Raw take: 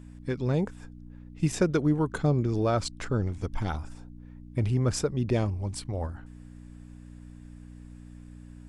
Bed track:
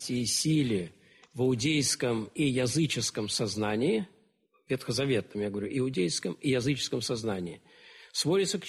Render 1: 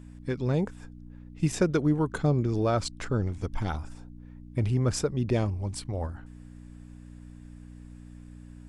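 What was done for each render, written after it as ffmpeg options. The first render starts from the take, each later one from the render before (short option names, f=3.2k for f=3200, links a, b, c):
-af anull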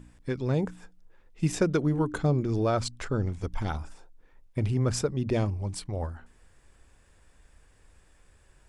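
-af "bandreject=f=60:t=h:w=4,bandreject=f=120:t=h:w=4,bandreject=f=180:t=h:w=4,bandreject=f=240:t=h:w=4,bandreject=f=300:t=h:w=4"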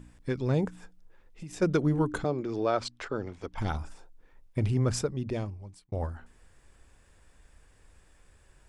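-filter_complex "[0:a]asplit=3[a][b][c];[a]afade=t=out:st=0.68:d=0.02[d];[b]acompressor=threshold=-39dB:ratio=6:attack=3.2:release=140:knee=1:detection=peak,afade=t=in:st=0.68:d=0.02,afade=t=out:st=1.61:d=0.02[e];[c]afade=t=in:st=1.61:d=0.02[f];[d][e][f]amix=inputs=3:normalize=0,asettb=1/sr,asplit=3[g][h][i];[g]atrim=end=2.244[j];[h]atrim=start=2.24:end=3.58,asetpts=PTS-STARTPTS,afade=t=in:d=0.004:c=qsin,afade=t=out:st=1.336:d=0.004:c=qsin,acrossover=split=270 5600:gain=0.2 1 0.251[k][l][m];[k][l][m]amix=inputs=3:normalize=0[n];[i]atrim=start=3.576[o];[j][n]acrossfade=d=0.004:c1=hsin:c2=qsin[p];[p][o]acrossfade=d=0.004:c1=qsin:c2=hsin,asplit=2[q][r];[q]atrim=end=5.92,asetpts=PTS-STARTPTS,afade=t=out:st=4.79:d=1.13[s];[r]atrim=start=5.92,asetpts=PTS-STARTPTS,afade=t=in:d=0.004:c=hsin[t];[s][t]concat=n=2:v=0:a=1"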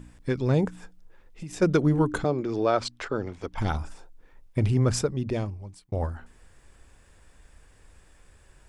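-af "volume=4dB"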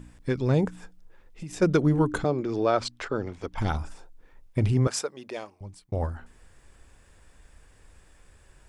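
-filter_complex "[0:a]asettb=1/sr,asplit=3[a][b][c];[a]atrim=end=4.874[d];[b]atrim=start=4.87:end=5.61,asetpts=PTS-STARTPTS,afade=t=in:d=0.004:c=qsin,afade=t=out:st=0.736:d=0.004:c=qsin,highpass=570[e];[c]atrim=start=5.606[f];[d][e]acrossfade=d=0.004:c1=hsin:c2=qsin[g];[g][f]acrossfade=d=0.004:c1=qsin:c2=hsin"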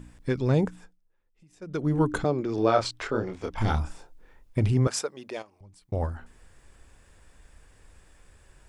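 -filter_complex "[0:a]asettb=1/sr,asplit=3[a][b][c];[a]atrim=end=2.554[d];[b]atrim=start=2.55:end=4.6,asetpts=PTS-STARTPTS,afade=t=in:d=0.004:c=qsin,afade=t=out:st=2.046:d=0.004:c=qsin,asplit=2[e][f];[f]adelay=27,volume=-3.5dB[g];[e][g]amix=inputs=2:normalize=0,atrim=end_sample=90405[h];[c]atrim=start=4.596[i];[d][h]acrossfade=d=0.004:c1=hsin:c2=qsin[j];[j][i]acrossfade=d=0.004:c1=qsin:c2=hsin,asettb=1/sr,asplit=3[k][l][m];[k]atrim=end=5.424[n];[l]atrim=start=5.42:end=5.82,asetpts=PTS-STARTPTS,afade=t=in:d=0.004:c=qsin,afade=t=out:st=0.396:d=0.004:c=qsin,acompressor=threshold=-55dB:ratio=2:attack=3.2:release=140:knee=1:detection=peak[o];[m]atrim=start=5.816[p];[n][o]acrossfade=d=0.004:c1=hsin:c2=qsin[q];[q][p]acrossfade=d=0.004:c1=qsin:c2=hsin,asplit=3[r][s][t];[r]atrim=end=1,asetpts=PTS-STARTPTS,afade=t=out:st=0.63:d=0.37:silence=0.1[u];[s]atrim=start=1:end=1.66,asetpts=PTS-STARTPTS,volume=-20dB[v];[t]atrim=start=1.66,asetpts=PTS-STARTPTS,afade=t=in:d=0.37:silence=0.1[w];[u][v][w]concat=n=3:v=0:a=1"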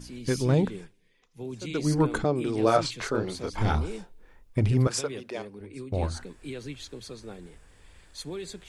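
-filter_complex "[1:a]volume=-10.5dB[a];[0:a][a]amix=inputs=2:normalize=0"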